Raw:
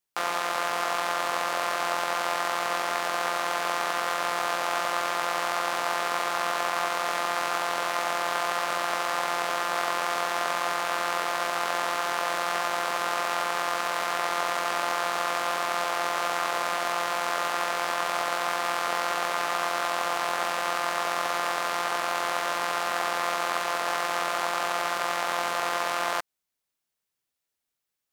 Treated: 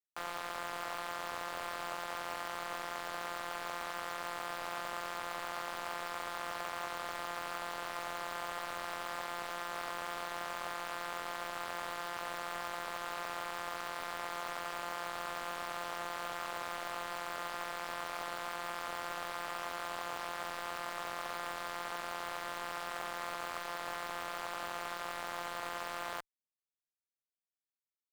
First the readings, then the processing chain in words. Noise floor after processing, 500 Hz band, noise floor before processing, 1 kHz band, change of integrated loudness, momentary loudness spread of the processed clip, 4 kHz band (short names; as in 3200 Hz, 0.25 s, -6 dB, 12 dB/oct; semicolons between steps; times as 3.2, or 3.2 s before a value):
under -85 dBFS, -13.0 dB, -84 dBFS, -13.0 dB, -12.5 dB, 0 LU, -12.5 dB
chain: added harmonics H 7 -18 dB, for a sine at -10.5 dBFS; soft clip -25 dBFS, distortion -6 dB; gain -4 dB